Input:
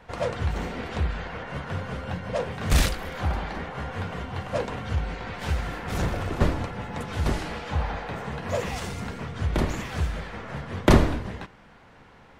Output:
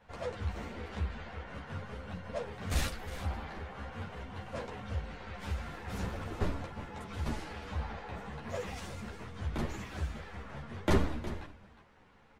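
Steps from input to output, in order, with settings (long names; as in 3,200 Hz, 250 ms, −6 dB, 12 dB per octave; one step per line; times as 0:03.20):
single-tap delay 361 ms −14 dB
string-ensemble chorus
level −7.5 dB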